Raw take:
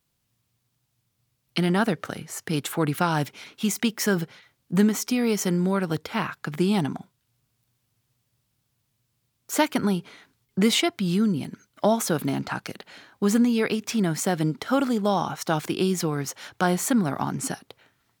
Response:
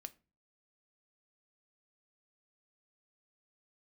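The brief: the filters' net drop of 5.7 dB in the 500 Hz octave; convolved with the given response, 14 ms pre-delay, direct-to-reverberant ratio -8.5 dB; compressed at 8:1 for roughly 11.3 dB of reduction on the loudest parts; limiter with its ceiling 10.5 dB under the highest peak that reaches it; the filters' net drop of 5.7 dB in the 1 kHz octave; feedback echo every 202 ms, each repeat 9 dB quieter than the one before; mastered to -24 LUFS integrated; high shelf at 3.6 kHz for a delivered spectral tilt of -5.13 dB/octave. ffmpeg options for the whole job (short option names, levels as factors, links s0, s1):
-filter_complex "[0:a]equalizer=f=500:t=o:g=-6.5,equalizer=f=1000:t=o:g=-4.5,highshelf=f=3600:g=-8,acompressor=threshold=0.0355:ratio=8,alimiter=level_in=1.33:limit=0.0631:level=0:latency=1,volume=0.75,aecho=1:1:202|404|606|808:0.355|0.124|0.0435|0.0152,asplit=2[s0][s1];[1:a]atrim=start_sample=2205,adelay=14[s2];[s1][s2]afir=irnorm=-1:irlink=0,volume=5.01[s3];[s0][s3]amix=inputs=2:normalize=0,volume=1.26"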